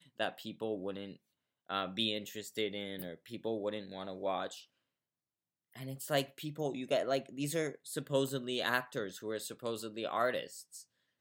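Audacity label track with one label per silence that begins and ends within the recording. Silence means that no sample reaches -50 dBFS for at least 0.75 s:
4.630000	5.760000	silence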